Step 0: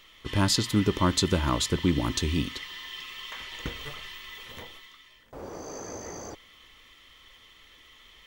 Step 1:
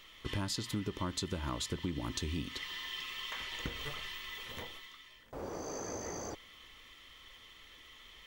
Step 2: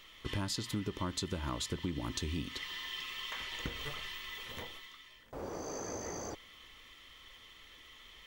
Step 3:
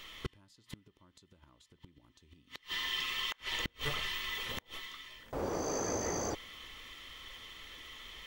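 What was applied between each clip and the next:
downward compressor 5 to 1, threshold −33 dBFS, peak gain reduction 13.5 dB; level −1.5 dB
no processing that can be heard
gate with flip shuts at −29 dBFS, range −33 dB; level +6 dB

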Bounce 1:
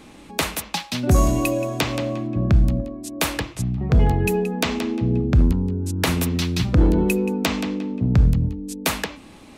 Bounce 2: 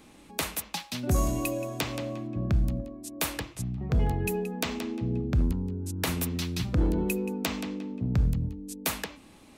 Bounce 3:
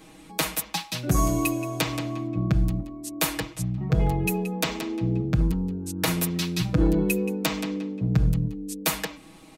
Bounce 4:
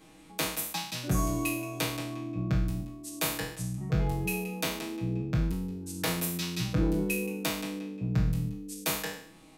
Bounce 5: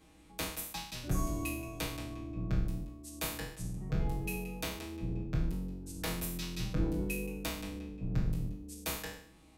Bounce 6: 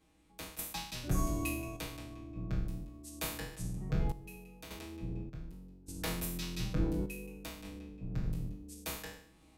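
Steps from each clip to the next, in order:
high-shelf EQ 9,400 Hz +8.5 dB; level −9 dB
comb filter 6.3 ms, depth 92%; level +2 dB
peak hold with a decay on every bin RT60 0.60 s; level −7.5 dB
sub-octave generator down 2 octaves, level 0 dB; level −7 dB
sample-and-hold tremolo 1.7 Hz, depth 80%; level +1 dB

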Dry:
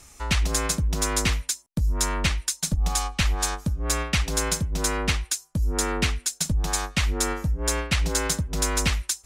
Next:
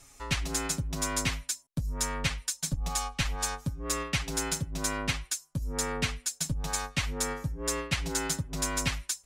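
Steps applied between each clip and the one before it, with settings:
comb filter 7.3 ms, depth 64%
level −7 dB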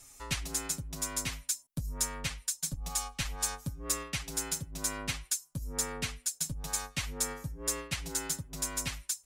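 high-shelf EQ 6,800 Hz +11.5 dB
speech leveller 0.5 s
level −7 dB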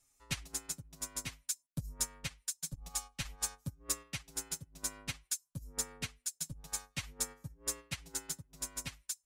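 in parallel at −1.5 dB: brickwall limiter −25.5 dBFS, peak gain reduction 8.5 dB
on the sum: expander for the loud parts 2.5 to 1, over −37 dBFS
level −5 dB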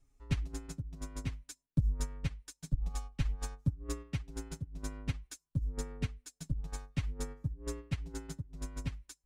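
RIAA equalisation playback
hollow resonant body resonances 290/410 Hz, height 6 dB
level −1.5 dB

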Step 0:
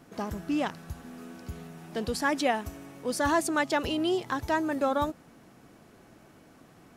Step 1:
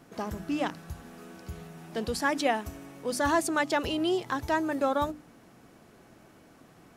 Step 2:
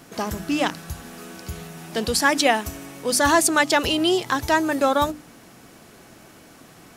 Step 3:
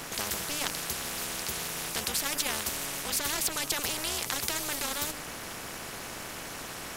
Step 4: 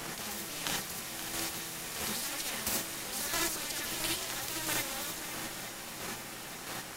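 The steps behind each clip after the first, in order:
mains-hum notches 50/100/150/200/250/300 Hz
high-shelf EQ 2,200 Hz +8.5 dB; level +6.5 dB
amplitude modulation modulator 300 Hz, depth 70%; every bin compressed towards the loudest bin 4 to 1; level −3 dB
square-wave tremolo 1.5 Hz, depth 65%, duty 10%; feedback echo with a long and a short gap by turns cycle 877 ms, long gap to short 1.5 to 1, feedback 60%, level −11 dB; reverb whose tail is shaped and stops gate 100 ms rising, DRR −2.5 dB; level −1.5 dB

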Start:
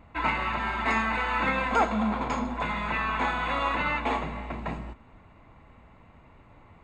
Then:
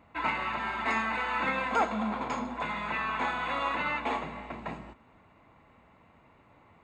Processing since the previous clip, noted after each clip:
high-pass filter 180 Hz 6 dB per octave
level −3 dB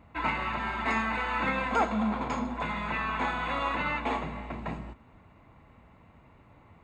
low-shelf EQ 170 Hz +10.5 dB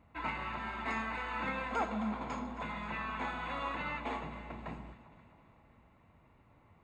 delay that swaps between a low-pass and a high-pass 133 ms, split 1,200 Hz, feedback 75%, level −13 dB
level −8 dB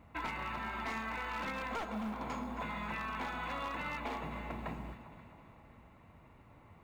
wavefolder on the positive side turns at −32 dBFS
downward compressor 4 to 1, threshold −42 dBFS, peak gain reduction 10.5 dB
noise that follows the level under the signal 33 dB
level +5 dB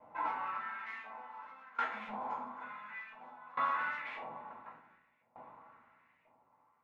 auto-filter band-pass saw up 0.96 Hz 690–2,300 Hz
rectangular room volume 350 cubic metres, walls furnished, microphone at 4.9 metres
tremolo with a ramp in dB decaying 0.56 Hz, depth 23 dB
level +3 dB

